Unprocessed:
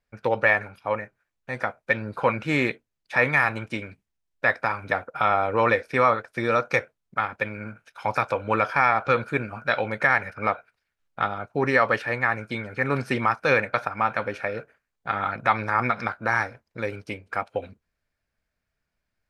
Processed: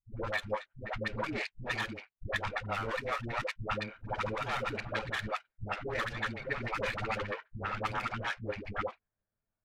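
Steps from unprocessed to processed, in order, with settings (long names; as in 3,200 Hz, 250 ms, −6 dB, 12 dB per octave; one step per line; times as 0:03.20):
lower of the sound and its delayed copy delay 9.4 ms
low-pass that shuts in the quiet parts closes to 1,200 Hz, open at −18.5 dBFS
speech leveller within 3 dB 0.5 s
tempo change 2×
all-pass dispersion highs, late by 111 ms, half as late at 400 Hz
level −8 dB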